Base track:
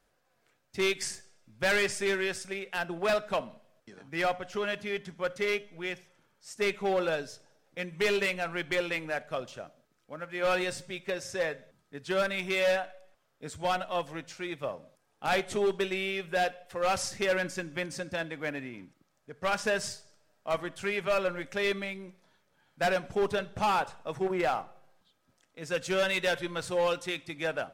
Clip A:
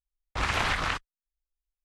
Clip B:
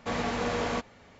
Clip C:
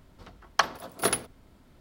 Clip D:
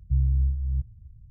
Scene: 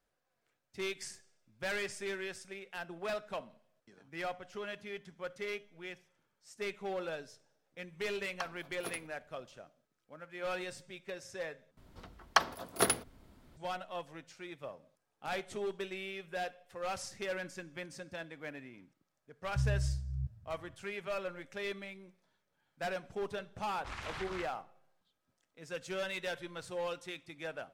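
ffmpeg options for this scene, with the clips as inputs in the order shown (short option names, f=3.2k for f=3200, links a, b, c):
-filter_complex "[3:a]asplit=2[a][b];[0:a]volume=-10dB[c];[4:a]highpass=120[d];[c]asplit=2[e][f];[e]atrim=end=11.774[g];[b]atrim=end=1.8,asetpts=PTS-STARTPTS,volume=-3dB[h];[f]atrim=start=13.566[i];[a]atrim=end=1.8,asetpts=PTS-STARTPTS,volume=-17.5dB,afade=t=in:d=0.004:c=hsin,afade=t=out:st=1.796:d=0.004:c=hsin,adelay=7810[j];[d]atrim=end=1.3,asetpts=PTS-STARTPTS,volume=-1.5dB,afade=t=in:d=0.004:c=hsin,afade=t=out:st=1.296:d=0.004:c=hsin,adelay=19450[k];[1:a]atrim=end=1.84,asetpts=PTS-STARTPTS,volume=-16dB,afade=t=in:d=0.004:c=hsin,afade=t=out:st=1.836:d=0.004:c=hsin,adelay=23490[l];[g][h]acrossfade=d=0.004:c1=hsin:c2=hsin[m];[m][i]acrossfade=d=0.004:c1=hsin:c2=hsin[n];[n][j][k][l]amix=inputs=4:normalize=0"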